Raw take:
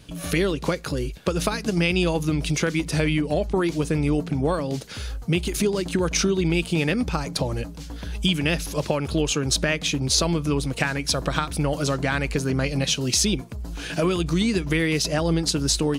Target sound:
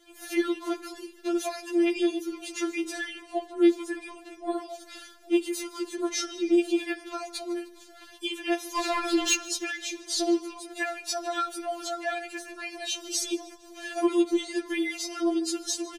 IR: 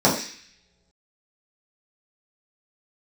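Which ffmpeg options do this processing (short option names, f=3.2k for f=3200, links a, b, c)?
-filter_complex "[0:a]asettb=1/sr,asplit=3[a][b][c];[a]atrim=end=8.754[d];[b]atrim=start=8.75:end=9.35,asetpts=PTS-STARTPTS,afade=t=in:d=0.004:c=qsin,afade=t=out:st=0.596:d=0.004:c=qsin,asplit=2[e][f];[f]highpass=f=720:p=1,volume=23dB,asoftclip=type=tanh:threshold=-7dB[g];[e][g]amix=inputs=2:normalize=0,lowpass=f=4.3k:p=1,volume=-6dB[h];[c]atrim=start=9.346[i];[d][h]acrossfade=d=0.004:c1=hsin:c2=qsin[j];[j][i]acrossfade=d=0.004:c1=qsin:c2=hsin,aecho=1:1:153|306|459|612:0.0891|0.0455|0.0232|0.0118,asplit=2[k][l];[1:a]atrim=start_sample=2205[m];[l][m]afir=irnorm=-1:irlink=0,volume=-29.5dB[n];[k][n]amix=inputs=2:normalize=0,afftfilt=real='re*4*eq(mod(b,16),0)':imag='im*4*eq(mod(b,16),0)':win_size=2048:overlap=0.75,volume=-5dB"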